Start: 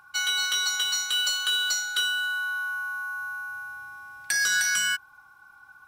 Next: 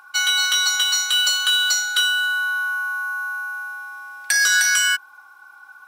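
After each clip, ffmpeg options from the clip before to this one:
ffmpeg -i in.wav -af "highpass=420,volume=7dB" out.wav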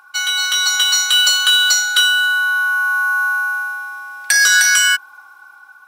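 ffmpeg -i in.wav -af "dynaudnorm=framelen=270:gausssize=5:maxgain=10.5dB" out.wav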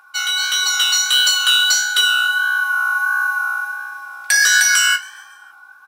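ffmpeg -i in.wav -filter_complex "[0:a]asplit=5[link_01][link_02][link_03][link_04][link_05];[link_02]adelay=138,afreqshift=47,volume=-24dB[link_06];[link_03]adelay=276,afreqshift=94,volume=-28.9dB[link_07];[link_04]adelay=414,afreqshift=141,volume=-33.8dB[link_08];[link_05]adelay=552,afreqshift=188,volume=-38.6dB[link_09];[link_01][link_06][link_07][link_08][link_09]amix=inputs=5:normalize=0,flanger=delay=9.8:depth=9.5:regen=42:speed=1.5:shape=sinusoidal,volume=2.5dB" out.wav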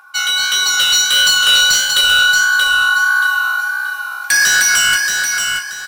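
ffmpeg -i in.wav -filter_complex "[0:a]asoftclip=type=tanh:threshold=-11.5dB,asplit=2[link_01][link_02];[link_02]aecho=0:1:629|1258|1887|2516:0.562|0.169|0.0506|0.0152[link_03];[link_01][link_03]amix=inputs=2:normalize=0,volume=4.5dB" out.wav

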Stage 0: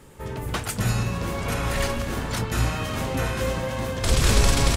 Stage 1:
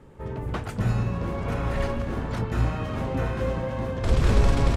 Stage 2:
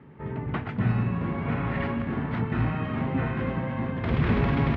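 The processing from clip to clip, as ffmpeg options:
ffmpeg -i in.wav -af "lowpass=frequency=1000:poles=1" out.wav
ffmpeg -i in.wav -af "highpass=100,equalizer=frequency=150:width_type=q:width=4:gain=6,equalizer=frequency=240:width_type=q:width=4:gain=5,equalizer=frequency=530:width_type=q:width=4:gain=-7,equalizer=frequency=2000:width_type=q:width=4:gain=5,lowpass=frequency=3100:width=0.5412,lowpass=frequency=3100:width=1.3066" out.wav

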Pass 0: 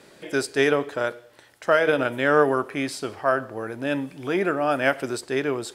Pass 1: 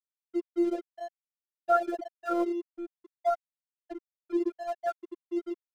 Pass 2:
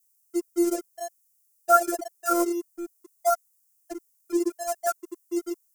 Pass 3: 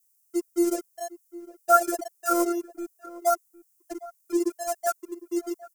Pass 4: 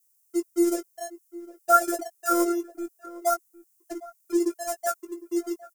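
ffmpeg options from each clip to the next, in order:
ffmpeg -i in.wav -af "afftfilt=real='re*gte(hypot(re,im),0.562)':imag='im*gte(hypot(re,im),0.562)':win_size=1024:overlap=0.75,aeval=exprs='sgn(val(0))*max(abs(val(0))-0.00794,0)':channel_layout=same,afftfilt=real='hypot(re,im)*cos(PI*b)':imag='0':win_size=512:overlap=0.75" out.wav
ffmpeg -i in.wav -af "adynamicequalizer=threshold=0.00501:dfrequency=1300:dqfactor=2.6:tfrequency=1300:tqfactor=2.6:attack=5:release=100:ratio=0.375:range=3:mode=boostabove:tftype=bell,aexciter=amount=15.7:drive=4.8:freq=5500,volume=3.5dB" out.wav
ffmpeg -i in.wav -filter_complex "[0:a]asplit=2[link_01][link_02];[link_02]adelay=758,volume=-18dB,highshelf=frequency=4000:gain=-17.1[link_03];[link_01][link_03]amix=inputs=2:normalize=0" out.wav
ffmpeg -i in.wav -filter_complex "[0:a]asplit=2[link_01][link_02];[link_02]adelay=18,volume=-8.5dB[link_03];[link_01][link_03]amix=inputs=2:normalize=0" out.wav

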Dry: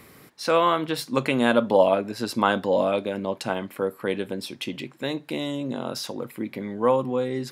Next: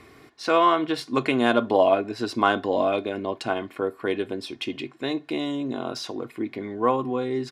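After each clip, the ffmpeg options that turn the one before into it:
ffmpeg -i in.wav -af "aecho=1:1:2.8:0.57,adynamicsmooth=sensitivity=1:basefreq=6500" out.wav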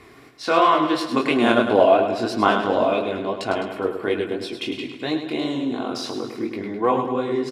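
ffmpeg -i in.wav -filter_complex "[0:a]flanger=delay=18.5:depth=7.7:speed=2.9,asplit=2[link_01][link_02];[link_02]aecho=0:1:104|208|312|416|520|624|728:0.376|0.214|0.122|0.0696|0.0397|0.0226|0.0129[link_03];[link_01][link_03]amix=inputs=2:normalize=0,volume=5.5dB" out.wav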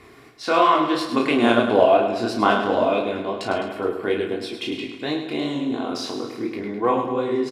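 ffmpeg -i in.wav -filter_complex "[0:a]asplit=2[link_01][link_02];[link_02]adelay=34,volume=-6.5dB[link_03];[link_01][link_03]amix=inputs=2:normalize=0,volume=-1dB" out.wav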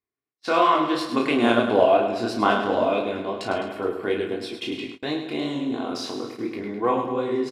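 ffmpeg -i in.wav -af "agate=range=-44dB:threshold=-34dB:ratio=16:detection=peak,volume=-2dB" out.wav

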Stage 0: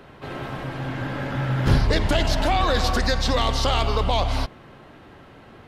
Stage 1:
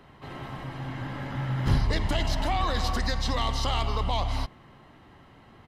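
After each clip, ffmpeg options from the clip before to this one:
ffmpeg -i in.wav -af "aecho=1:1:1:0.34,volume=-7dB" out.wav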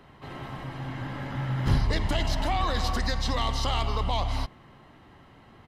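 ffmpeg -i in.wav -af anull out.wav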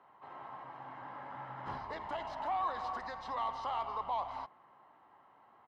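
ffmpeg -i in.wav -af "bandpass=frequency=940:width_type=q:width=2.3:csg=0,volume=-2dB" out.wav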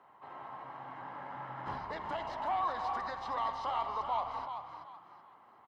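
ffmpeg -i in.wav -filter_complex "[0:a]asplit=5[link_01][link_02][link_03][link_04][link_05];[link_02]adelay=379,afreqshift=43,volume=-8dB[link_06];[link_03]adelay=758,afreqshift=86,volume=-18.2dB[link_07];[link_04]adelay=1137,afreqshift=129,volume=-28.3dB[link_08];[link_05]adelay=1516,afreqshift=172,volume=-38.5dB[link_09];[link_01][link_06][link_07][link_08][link_09]amix=inputs=5:normalize=0,volume=1.5dB" out.wav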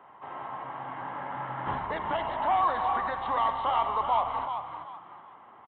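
ffmpeg -i in.wav -af "aresample=8000,aresample=44100,volume=8dB" out.wav

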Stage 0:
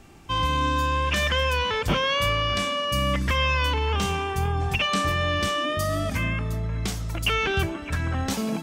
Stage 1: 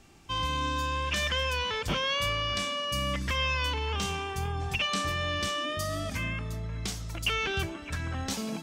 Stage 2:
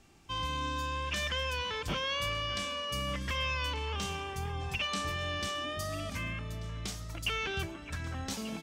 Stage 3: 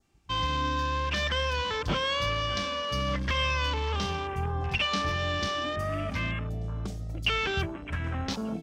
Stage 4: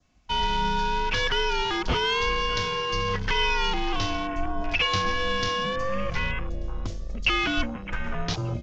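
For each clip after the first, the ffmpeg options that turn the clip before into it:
ffmpeg -i in.wav -af "equalizer=frequency=5300:width_type=o:width=2:gain=6,volume=-7.5dB" out.wav
ffmpeg -i in.wav -af "aecho=1:1:1187:0.15,volume=-4.5dB" out.wav
ffmpeg -i in.wav -af "afwtdn=0.00631,adynamicequalizer=threshold=0.00398:dfrequency=2600:dqfactor=2.1:tfrequency=2600:tqfactor=2.1:attack=5:release=100:ratio=0.375:range=2.5:mode=cutabove:tftype=bell,volume=6.5dB" out.wav
ffmpeg -i in.wav -af "aresample=16000,aresample=44100,afreqshift=-97,volume=4dB" out.wav

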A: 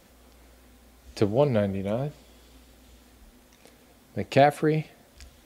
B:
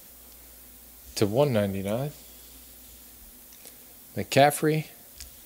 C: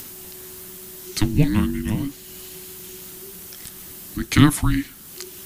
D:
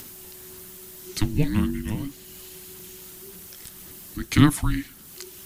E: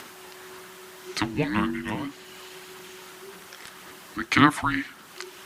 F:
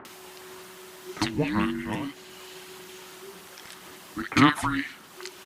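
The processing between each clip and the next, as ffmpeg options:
ffmpeg -i in.wav -af "aemphasis=mode=production:type=75fm" out.wav
ffmpeg -i in.wav -filter_complex "[0:a]asplit=2[link_01][link_02];[link_02]acompressor=mode=upward:threshold=-30dB:ratio=2.5,volume=0dB[link_03];[link_01][link_03]amix=inputs=2:normalize=0,afreqshift=-430,volume=-1dB" out.wav
ffmpeg -i in.wav -af "aphaser=in_gain=1:out_gain=1:delay=2.3:decay=0.23:speed=1.8:type=sinusoidal,volume=-4.5dB" out.wav
ffmpeg -i in.wav -filter_complex "[0:a]asplit=2[link_01][link_02];[link_02]alimiter=limit=-12.5dB:level=0:latency=1:release=372,volume=-3dB[link_03];[link_01][link_03]amix=inputs=2:normalize=0,bandpass=frequency=1200:width_type=q:width=0.88:csg=0,volume=6.5dB" out.wav
ffmpeg -i in.wav -filter_complex "[0:a]acrossover=split=1600[link_01][link_02];[link_02]adelay=50[link_03];[link_01][link_03]amix=inputs=2:normalize=0" out.wav

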